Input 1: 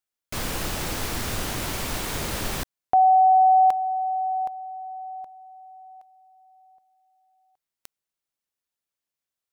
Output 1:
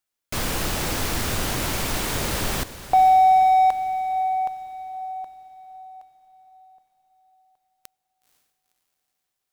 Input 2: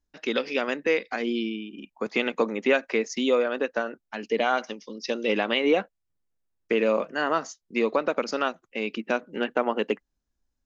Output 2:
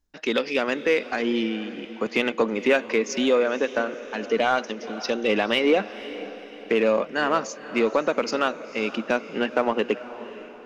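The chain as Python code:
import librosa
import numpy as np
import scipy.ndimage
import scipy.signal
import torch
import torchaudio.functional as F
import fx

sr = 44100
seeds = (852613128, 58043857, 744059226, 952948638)

p1 = 10.0 ** (-25.0 / 20.0) * np.tanh(x / 10.0 ** (-25.0 / 20.0))
p2 = x + F.gain(torch.from_numpy(p1), -4.0).numpy()
y = fx.echo_diffused(p2, sr, ms=496, feedback_pct=47, wet_db=-14.5)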